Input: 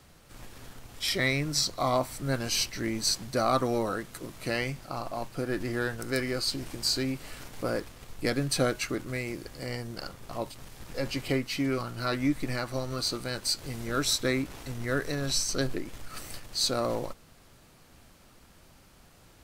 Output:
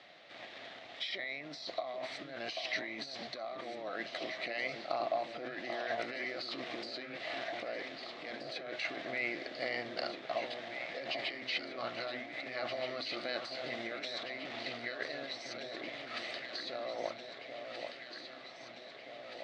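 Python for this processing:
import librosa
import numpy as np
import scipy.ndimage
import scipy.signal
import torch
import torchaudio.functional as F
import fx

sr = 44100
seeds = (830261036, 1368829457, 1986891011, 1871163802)

p1 = fx.over_compress(x, sr, threshold_db=-36.0, ratio=-1.0)
p2 = fx.cabinet(p1, sr, low_hz=440.0, low_slope=12, high_hz=4100.0, hz=(440.0, 660.0, 970.0, 1400.0, 2000.0, 3700.0), db=(-5, 9, -8, -5, 7, 6))
p3 = p2 + fx.echo_alternate(p2, sr, ms=788, hz=1100.0, feedback_pct=81, wet_db=-6, dry=0)
y = p3 * librosa.db_to_amplitude(-2.0)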